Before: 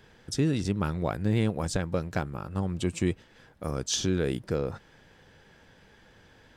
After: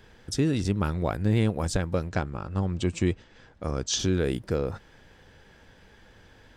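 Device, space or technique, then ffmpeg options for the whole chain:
low shelf boost with a cut just above: -filter_complex "[0:a]asplit=3[link_01][link_02][link_03];[link_01]afade=type=out:start_time=2.09:duration=0.02[link_04];[link_02]lowpass=frequency=7700:width=0.5412,lowpass=frequency=7700:width=1.3066,afade=type=in:start_time=2.09:duration=0.02,afade=type=out:start_time=3.98:duration=0.02[link_05];[link_03]afade=type=in:start_time=3.98:duration=0.02[link_06];[link_04][link_05][link_06]amix=inputs=3:normalize=0,lowshelf=frequency=91:gain=6.5,equalizer=frequency=150:width_type=o:width=0.6:gain=-3.5,volume=1.5dB"

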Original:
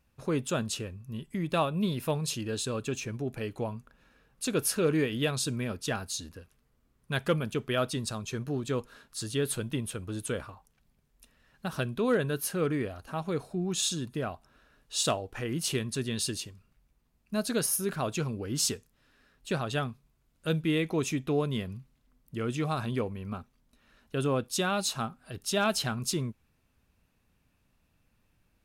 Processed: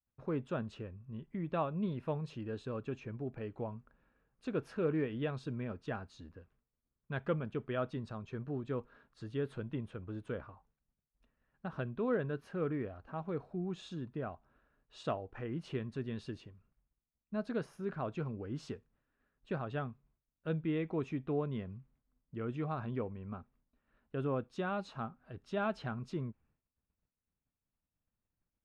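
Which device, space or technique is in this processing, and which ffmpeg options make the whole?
hearing-loss simulation: -af "lowpass=1700,agate=range=-33dB:threshold=-60dB:ratio=3:detection=peak,volume=-6.5dB"

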